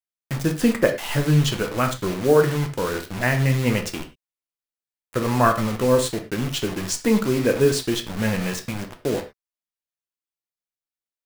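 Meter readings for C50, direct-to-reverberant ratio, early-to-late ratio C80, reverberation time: 11.0 dB, 4.5 dB, 16.0 dB, not exponential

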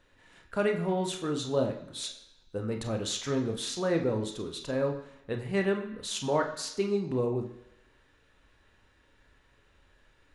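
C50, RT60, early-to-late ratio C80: 8.5 dB, 1.0 s, 11.5 dB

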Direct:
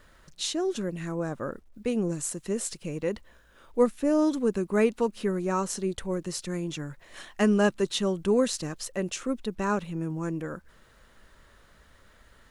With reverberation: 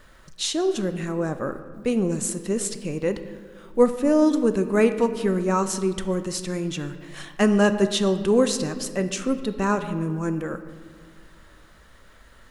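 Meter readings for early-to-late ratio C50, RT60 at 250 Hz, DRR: 11.0 dB, 2.1 s, 9.0 dB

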